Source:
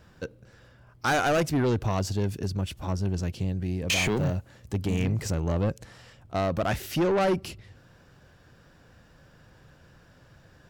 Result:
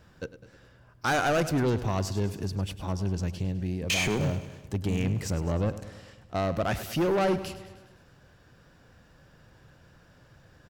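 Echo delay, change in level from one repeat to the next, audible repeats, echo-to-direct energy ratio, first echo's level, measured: 103 ms, −4.5 dB, 5, −12.0 dB, −14.0 dB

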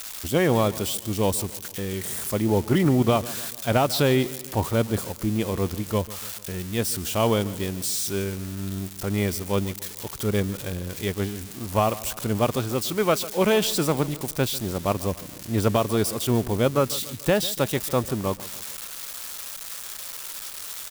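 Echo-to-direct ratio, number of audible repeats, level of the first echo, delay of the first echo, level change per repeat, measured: −16.5 dB, 3, −18.0 dB, 145 ms, −5.5 dB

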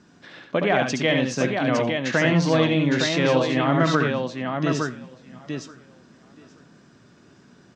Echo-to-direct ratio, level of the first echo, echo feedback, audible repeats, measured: −1.5 dB, −5.5 dB, repeats not evenly spaced, 4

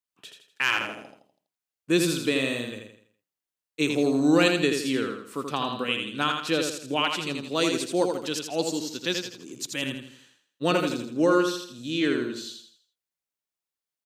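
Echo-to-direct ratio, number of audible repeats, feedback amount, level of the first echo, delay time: −4.5 dB, 4, 39%, −5.0 dB, 82 ms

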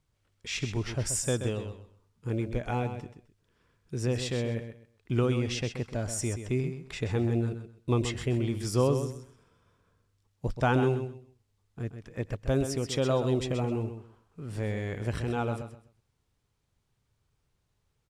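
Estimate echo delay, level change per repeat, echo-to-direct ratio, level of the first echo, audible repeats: 129 ms, −13.0 dB, −9.0 dB, −9.0 dB, 2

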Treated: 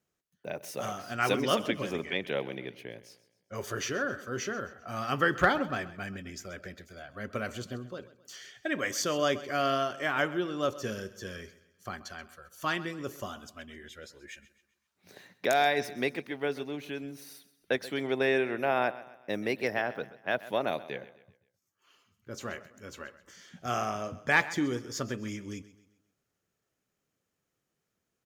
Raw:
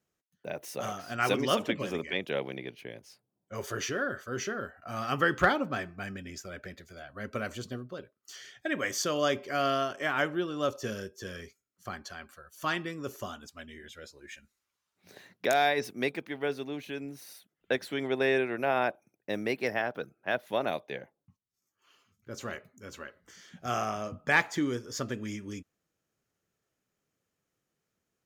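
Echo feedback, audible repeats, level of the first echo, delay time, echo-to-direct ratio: 42%, 3, −17.0 dB, 131 ms, −16.0 dB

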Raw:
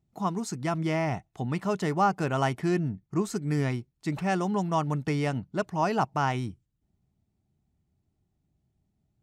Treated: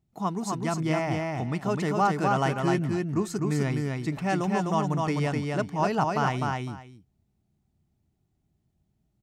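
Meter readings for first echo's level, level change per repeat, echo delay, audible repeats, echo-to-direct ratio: −3.0 dB, −15.0 dB, 254 ms, 2, −3.0 dB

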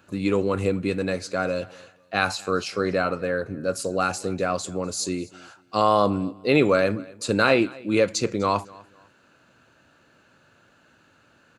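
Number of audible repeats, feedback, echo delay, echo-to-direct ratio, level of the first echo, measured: 2, 27%, 249 ms, −22.5 dB, −23.0 dB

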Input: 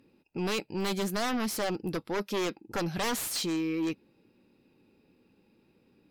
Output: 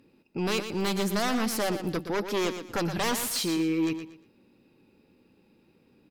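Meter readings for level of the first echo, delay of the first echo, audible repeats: −9.5 dB, 118 ms, 3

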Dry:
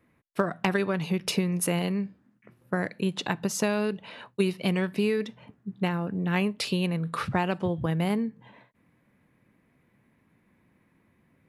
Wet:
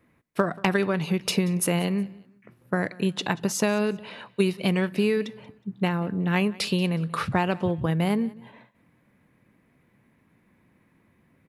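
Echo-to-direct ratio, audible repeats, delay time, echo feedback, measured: −21.5 dB, 2, 183 ms, 31%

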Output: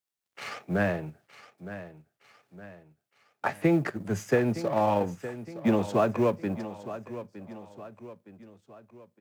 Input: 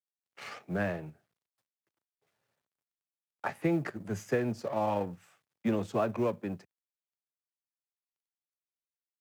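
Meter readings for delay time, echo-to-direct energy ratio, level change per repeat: 914 ms, −12.5 dB, −6.5 dB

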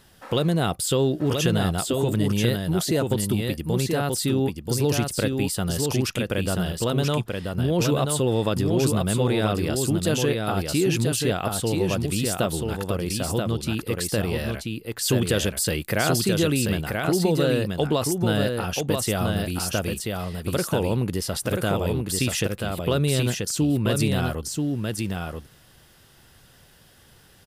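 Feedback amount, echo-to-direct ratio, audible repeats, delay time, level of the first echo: repeats not evenly spaced, −4.0 dB, 1, 983 ms, −4.0 dB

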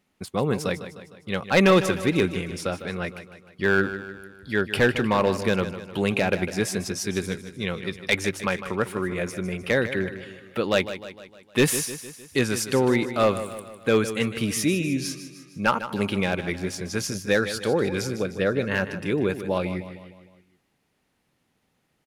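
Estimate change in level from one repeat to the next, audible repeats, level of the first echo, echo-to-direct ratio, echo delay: −5.5 dB, 5, −12.0 dB, −10.5 dB, 153 ms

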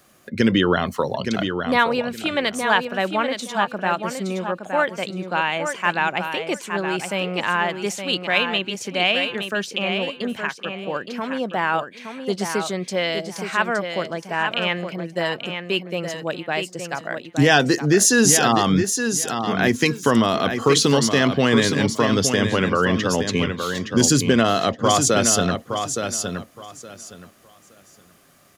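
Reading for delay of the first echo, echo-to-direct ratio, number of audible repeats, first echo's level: 868 ms, −7.0 dB, 3, −7.0 dB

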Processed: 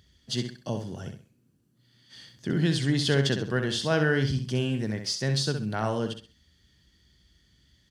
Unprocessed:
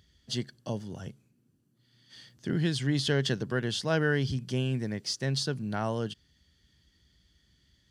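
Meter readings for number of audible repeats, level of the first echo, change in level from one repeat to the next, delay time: 3, −7.5 dB, −11.0 dB, 65 ms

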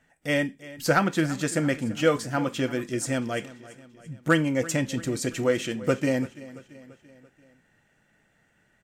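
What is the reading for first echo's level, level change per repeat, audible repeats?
−18.0 dB, −5.5 dB, 4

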